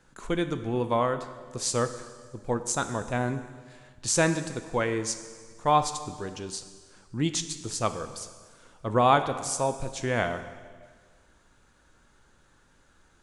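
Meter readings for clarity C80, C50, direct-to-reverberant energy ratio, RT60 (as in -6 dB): 12.5 dB, 11.0 dB, 9.0 dB, 1.6 s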